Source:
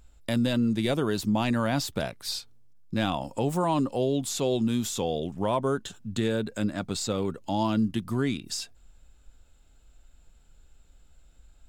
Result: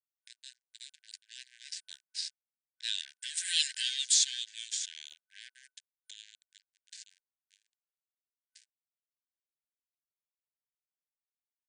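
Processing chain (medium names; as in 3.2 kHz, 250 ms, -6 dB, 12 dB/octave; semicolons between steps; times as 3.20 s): Doppler pass-by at 3.70 s, 15 m/s, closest 2.1 m; resonant high shelf 2.7 kHz +11 dB, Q 1.5; pre-echo 98 ms -23.5 dB; in parallel at -2.5 dB: compression 6:1, threshold -45 dBFS, peak gain reduction 20.5 dB; on the sum: crossover distortion -39.5 dBFS; FFT band-pass 1.5–9.5 kHz; trim +8 dB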